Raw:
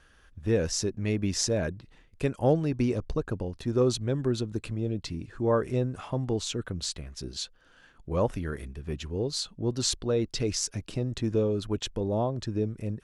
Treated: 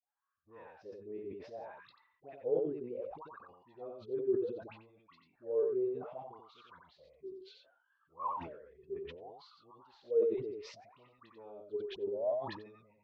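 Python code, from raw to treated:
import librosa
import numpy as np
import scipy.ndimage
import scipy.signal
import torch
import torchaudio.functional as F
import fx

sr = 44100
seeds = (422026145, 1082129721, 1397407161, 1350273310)

p1 = scipy.signal.sosfilt(scipy.signal.butter(4, 4500.0, 'lowpass', fs=sr, output='sos'), x)
p2 = fx.peak_eq(p1, sr, hz=2500.0, db=8.5, octaves=2.5)
p3 = fx.noise_reduce_blind(p2, sr, reduce_db=16)
p4 = scipy.signal.sosfilt(scipy.signal.butter(2, 50.0, 'highpass', fs=sr, output='sos'), p3)
p5 = fx.low_shelf(p4, sr, hz=72.0, db=12.0)
p6 = fx.dispersion(p5, sr, late='highs', ms=94.0, hz=1100.0)
p7 = fx.wah_lfo(p6, sr, hz=0.65, low_hz=380.0, high_hz=1200.0, q=21.0)
p8 = p7 + fx.echo_single(p7, sr, ms=90, db=-4.5, dry=0)
y = fx.sustainer(p8, sr, db_per_s=64.0)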